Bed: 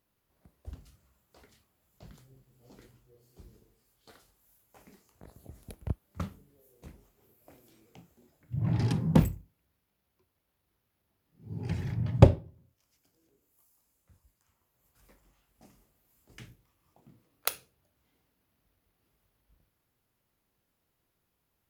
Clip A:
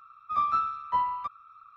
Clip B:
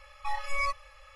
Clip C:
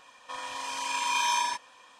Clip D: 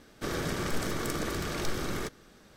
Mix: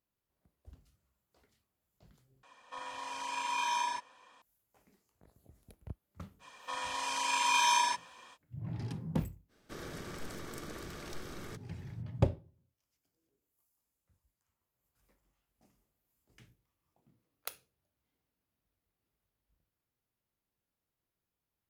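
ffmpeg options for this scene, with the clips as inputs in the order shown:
ffmpeg -i bed.wav -i cue0.wav -i cue1.wav -i cue2.wav -i cue3.wav -filter_complex "[3:a]asplit=2[link_01][link_02];[0:a]volume=-11.5dB[link_03];[link_01]highshelf=frequency=2400:gain=-7[link_04];[link_03]asplit=2[link_05][link_06];[link_05]atrim=end=2.434[link_07];[link_04]atrim=end=1.99,asetpts=PTS-STARTPTS,volume=-4dB[link_08];[link_06]atrim=start=4.416[link_09];[link_02]atrim=end=1.99,asetpts=PTS-STARTPTS,volume=-0.5dB,afade=type=in:duration=0.05,afade=type=out:start_time=1.94:duration=0.05,adelay=6390[link_10];[4:a]atrim=end=2.56,asetpts=PTS-STARTPTS,volume=-12dB,afade=type=in:duration=0.05,afade=type=out:start_time=2.51:duration=0.05,adelay=9480[link_11];[link_07][link_08]acrossfade=duration=0.004:curve1=hsin:curve2=hsin[link_12];[link_12][link_09]acrossfade=duration=0.004:curve1=hsin:curve2=hsin[link_13];[link_13][link_10][link_11]amix=inputs=3:normalize=0" out.wav

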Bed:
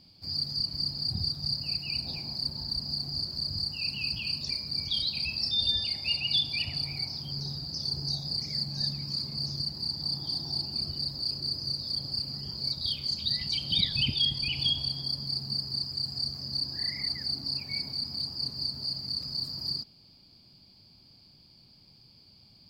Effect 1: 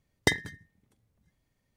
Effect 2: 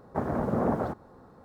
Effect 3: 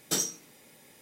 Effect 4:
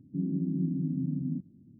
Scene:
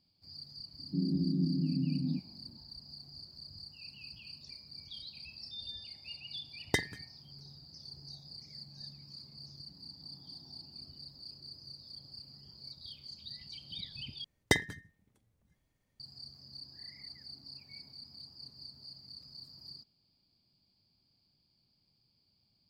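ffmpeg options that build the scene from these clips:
ffmpeg -i bed.wav -i cue0.wav -i cue1.wav -i cue2.wav -i cue3.wav -filter_complex "[4:a]asplit=2[link_01][link_02];[1:a]asplit=2[link_03][link_04];[0:a]volume=-17dB[link_05];[link_02]acompressor=threshold=-46dB:ratio=6:attack=3.2:release=140:knee=1:detection=peak[link_06];[link_05]asplit=2[link_07][link_08];[link_07]atrim=end=14.244[link_09];[link_04]atrim=end=1.76,asetpts=PTS-STARTPTS,volume=-2.5dB[link_10];[link_08]atrim=start=15.996[link_11];[link_01]atrim=end=1.79,asetpts=PTS-STARTPTS,volume=-1dB,afade=type=in:duration=0.004:curve=hsin,afade=type=out:start_time=1.786:duration=0.004:curve=hsin,adelay=790[link_12];[link_03]atrim=end=1.76,asetpts=PTS-STARTPTS,volume=-6dB,afade=type=in:duration=0.004:curve=hsin,afade=type=out:start_time=1.756:duration=0.004:curve=hsin,adelay=6470[link_13];[link_06]atrim=end=1.79,asetpts=PTS-STARTPTS,volume=-16.5dB,afade=type=in:duration=0.004:curve=hsin,afade=type=out:start_time=1.786:duration=0.004:curve=hsin,adelay=9560[link_14];[link_09][link_10]acrossfade=duration=0.004:curve1=hsin:curve2=hsin[link_15];[link_15][link_11]acrossfade=duration=0.004:curve1=hsin:curve2=hsin[link_16];[link_16][link_12][link_13][link_14]amix=inputs=4:normalize=0" out.wav

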